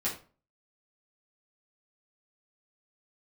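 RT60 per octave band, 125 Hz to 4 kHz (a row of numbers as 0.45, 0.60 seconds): 0.45, 0.40, 0.40, 0.35, 0.30, 0.25 seconds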